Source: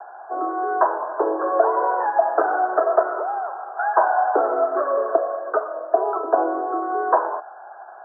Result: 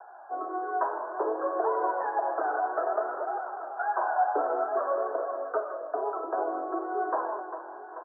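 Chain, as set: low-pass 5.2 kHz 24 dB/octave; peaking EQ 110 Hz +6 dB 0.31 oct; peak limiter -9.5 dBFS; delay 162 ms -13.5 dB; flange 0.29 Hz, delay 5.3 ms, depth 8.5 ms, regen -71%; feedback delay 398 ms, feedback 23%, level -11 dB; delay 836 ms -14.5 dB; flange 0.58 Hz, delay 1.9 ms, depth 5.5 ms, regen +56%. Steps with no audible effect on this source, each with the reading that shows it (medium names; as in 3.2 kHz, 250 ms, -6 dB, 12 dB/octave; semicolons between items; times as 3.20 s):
low-pass 5.2 kHz: input has nothing above 1.7 kHz; peaking EQ 110 Hz: input has nothing below 270 Hz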